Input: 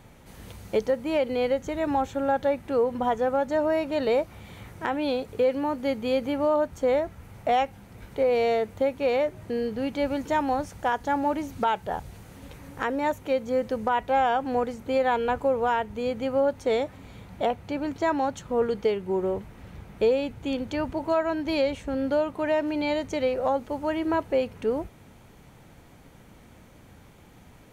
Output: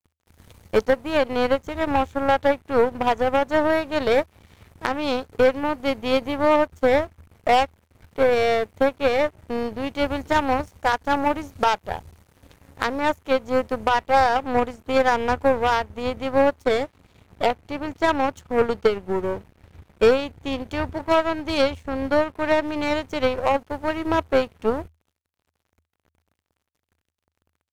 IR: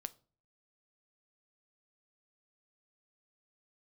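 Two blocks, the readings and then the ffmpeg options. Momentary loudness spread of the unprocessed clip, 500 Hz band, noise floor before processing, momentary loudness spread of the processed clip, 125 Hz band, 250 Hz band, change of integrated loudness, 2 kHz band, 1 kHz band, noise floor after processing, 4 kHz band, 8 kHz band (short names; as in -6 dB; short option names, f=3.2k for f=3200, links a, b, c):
8 LU, +3.5 dB, -52 dBFS, 9 LU, +5.0 dB, +2.5 dB, +4.0 dB, +7.5 dB, +5.0 dB, -80 dBFS, +7.5 dB, n/a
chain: -af "aeval=exprs='0.178*(cos(1*acos(clip(val(0)/0.178,-1,1)))-cos(1*PI/2))+0.0316*(cos(3*acos(clip(val(0)/0.178,-1,1)))-cos(3*PI/2))+0.0126*(cos(4*acos(clip(val(0)/0.178,-1,1)))-cos(4*PI/2))+0.00251*(cos(7*acos(clip(val(0)/0.178,-1,1)))-cos(7*PI/2))':c=same,aeval=exprs='sgn(val(0))*max(abs(val(0))-0.00224,0)':c=same,equalizer=f=80:t=o:w=0.31:g=13.5,volume=6.5dB"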